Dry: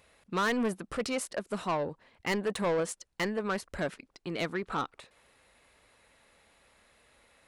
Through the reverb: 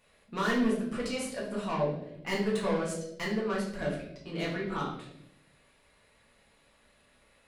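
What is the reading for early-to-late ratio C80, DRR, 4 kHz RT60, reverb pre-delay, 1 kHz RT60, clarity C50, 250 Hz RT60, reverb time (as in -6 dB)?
7.5 dB, -5.5 dB, 0.65 s, 4 ms, 0.60 s, 4.0 dB, 1.2 s, 0.80 s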